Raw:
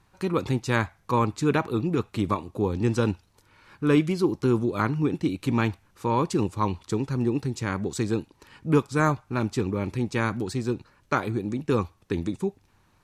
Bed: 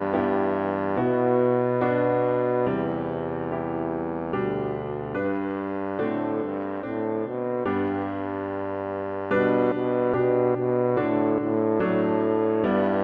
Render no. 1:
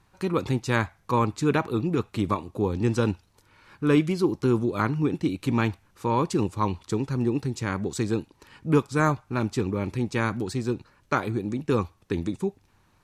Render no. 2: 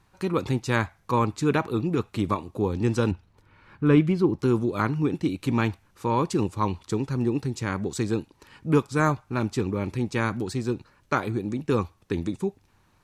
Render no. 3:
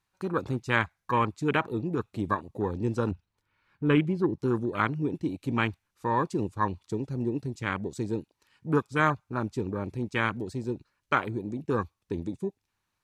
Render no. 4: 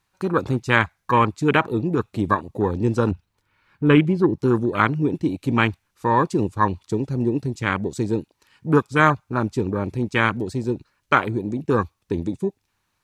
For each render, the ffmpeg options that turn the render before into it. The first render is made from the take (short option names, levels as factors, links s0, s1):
-af anull
-filter_complex "[0:a]asettb=1/sr,asplit=3[s0][s1][s2];[s0]atrim=end=3.114[s3];[s1]atrim=start=3.11:end=4.39,asetpts=PTS-STARTPTS,afade=t=in:d=0.004:c=qsin,afade=t=out:st=1.276:d=0.004:c=qsin,bass=f=250:g=5,treble=f=4000:g=-12[s4];[s2]atrim=start=4.386[s5];[s3][s4]acrossfade=d=0.004:c1=hsin:c2=qsin[s6];[s6][s5]acrossfade=d=0.004:c1=qsin:c2=hsin"
-af "afwtdn=0.0251,tiltshelf=f=1100:g=-5.5"
-af "volume=2.51,alimiter=limit=0.891:level=0:latency=1"